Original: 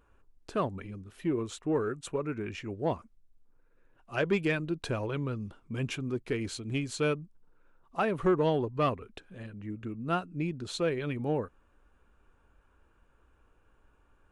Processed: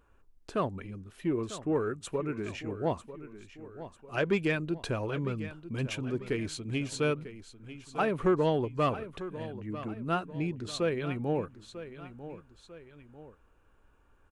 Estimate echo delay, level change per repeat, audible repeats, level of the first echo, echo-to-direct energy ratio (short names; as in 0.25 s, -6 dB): 0.946 s, -6.5 dB, 2, -13.5 dB, -12.5 dB